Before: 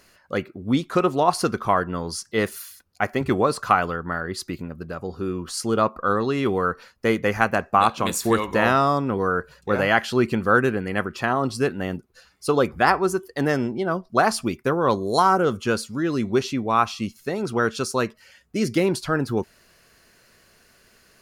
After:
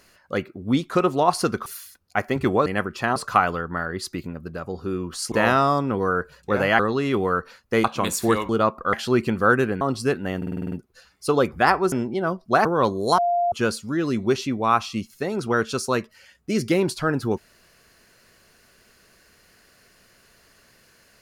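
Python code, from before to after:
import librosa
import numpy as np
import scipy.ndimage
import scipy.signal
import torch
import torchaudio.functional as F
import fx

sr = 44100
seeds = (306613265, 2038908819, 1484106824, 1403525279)

y = fx.edit(x, sr, fx.cut(start_s=1.66, length_s=0.85),
    fx.swap(start_s=5.67, length_s=0.44, other_s=8.51, other_length_s=1.47),
    fx.cut(start_s=7.16, length_s=0.7),
    fx.move(start_s=10.86, length_s=0.5, to_s=3.51),
    fx.stutter(start_s=11.92, slice_s=0.05, count=8),
    fx.cut(start_s=13.12, length_s=0.44),
    fx.cut(start_s=14.29, length_s=0.42),
    fx.bleep(start_s=15.24, length_s=0.34, hz=698.0, db=-18.0), tone=tone)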